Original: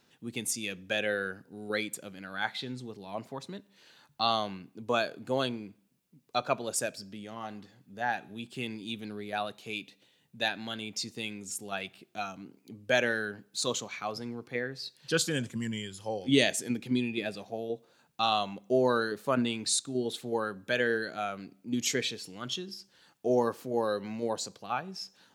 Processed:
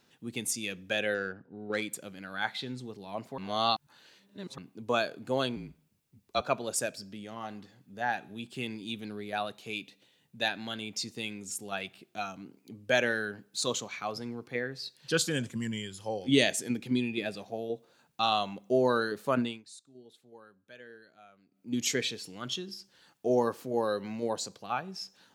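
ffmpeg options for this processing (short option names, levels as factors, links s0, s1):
-filter_complex "[0:a]asettb=1/sr,asplit=3[s0][s1][s2];[s0]atrim=end=1.144[s3];[s1]atrim=start=1.14:end=1.82,asetpts=PTS-STARTPTS,afade=t=in:d=0.004:c=qsin,afade=t=out:st=0.676:d=0.004:c=qsin,adynamicsmooth=sensitivity=2.5:basefreq=2000[s4];[s2]atrim=start=1.816[s5];[s3][s4]acrossfade=d=0.004:c1=hsin:c2=qsin[s6];[s6][s5]acrossfade=d=0.004:c1=qsin:c2=hsin,asettb=1/sr,asplit=3[s7][s8][s9];[s7]atrim=end=5.564[s10];[s8]atrim=start=5.56:end=6.41,asetpts=PTS-STARTPTS,afade=t=in:d=0.004:c=qsin,afade=t=out:st=0.846:d=0.004:c=qsin,afreqshift=-43[s11];[s9]atrim=start=6.406[s12];[s10][s11]acrossfade=d=0.004:c1=hsin:c2=qsin[s13];[s13][s12]acrossfade=d=0.004:c1=qsin:c2=hsin,asplit=5[s14][s15][s16][s17][s18];[s14]atrim=end=3.382[s19];[s15]atrim=start=3.378:end=4.582,asetpts=PTS-STARTPTS,areverse[s20];[s16]atrim=start=4.578:end=19.63,asetpts=PTS-STARTPTS,afade=t=out:st=14.802:d=0.25:silence=0.0794328[s21];[s17]atrim=start=19.63:end=21.51,asetpts=PTS-STARTPTS,volume=0.0794[s22];[s18]atrim=start=21.51,asetpts=PTS-STARTPTS,afade=t=in:d=0.25:silence=0.0794328[s23];[s19][s20]acrossfade=d=0.004:c1=hsin:c2=hsin[s24];[s21][s22][s23]concat=n=3:v=0:a=1[s25];[s24][s25]acrossfade=d=0.004:c1=hsin:c2=hsin"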